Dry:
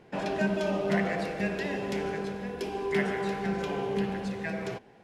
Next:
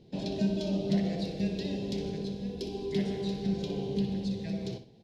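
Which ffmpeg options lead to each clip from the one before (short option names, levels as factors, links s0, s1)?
-af "firequalizer=gain_entry='entry(120,0);entry(1300,-28);entry(3900,2);entry(8100,-12)':delay=0.05:min_phase=1,aecho=1:1:62|124|186:0.282|0.0733|0.0191,volume=1.5"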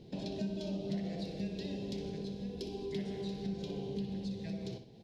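-af "acompressor=threshold=0.00447:ratio=2,volume=1.41"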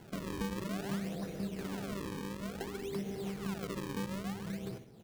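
-af "acrusher=samples=36:mix=1:aa=0.000001:lfo=1:lforange=57.6:lforate=0.57"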